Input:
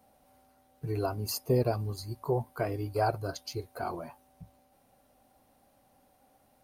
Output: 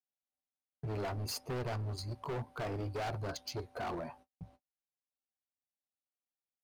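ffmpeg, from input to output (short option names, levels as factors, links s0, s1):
-filter_complex "[0:a]agate=range=0.00501:threshold=0.00141:ratio=16:detection=peak,asplit=2[s0][s1];[s1]alimiter=level_in=1.12:limit=0.0631:level=0:latency=1:release=23,volume=0.891,volume=0.841[s2];[s0][s2]amix=inputs=2:normalize=0,adynamicsmooth=sensitivity=7:basefreq=5400,asoftclip=type=hard:threshold=0.0299,volume=0.596"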